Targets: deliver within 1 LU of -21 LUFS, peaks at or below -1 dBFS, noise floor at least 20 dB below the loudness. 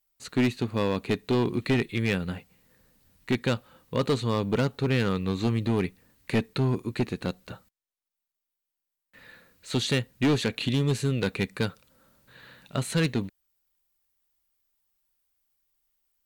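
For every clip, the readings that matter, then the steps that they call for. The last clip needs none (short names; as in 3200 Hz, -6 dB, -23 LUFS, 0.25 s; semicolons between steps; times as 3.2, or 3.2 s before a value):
clipped 1.4%; flat tops at -18.5 dBFS; dropouts 1; longest dropout 1.6 ms; loudness -28.0 LUFS; peak -18.5 dBFS; loudness target -21.0 LUFS
-> clip repair -18.5 dBFS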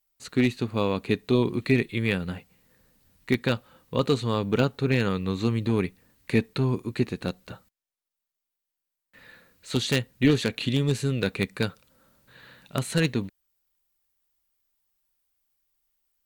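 clipped 0.0%; dropouts 1; longest dropout 1.6 ms
-> interpolate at 10.98, 1.6 ms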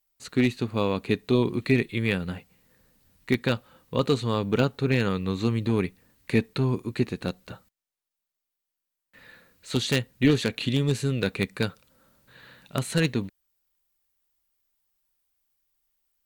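dropouts 0; loudness -26.5 LUFS; peak -9.5 dBFS; loudness target -21.0 LUFS
-> gain +5.5 dB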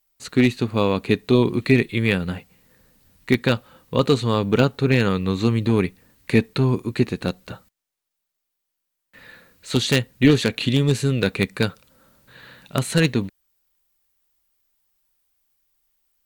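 loudness -21.0 LUFS; peak -4.0 dBFS; noise floor -80 dBFS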